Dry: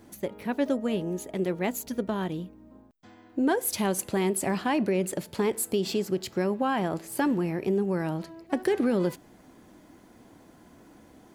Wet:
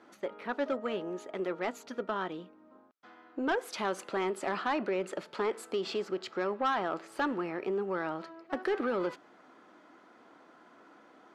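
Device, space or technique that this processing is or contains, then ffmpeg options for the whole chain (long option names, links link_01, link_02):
intercom: -af "highpass=380,lowpass=3900,equalizer=frequency=1300:width_type=o:width=0.41:gain=10.5,asoftclip=type=tanh:threshold=-20.5dB,volume=-1.5dB"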